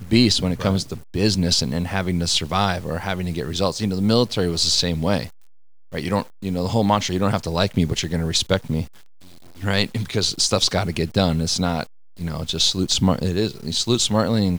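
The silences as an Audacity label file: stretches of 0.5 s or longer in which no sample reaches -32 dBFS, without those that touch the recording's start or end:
5.280000	5.930000	silence
8.860000	9.600000	silence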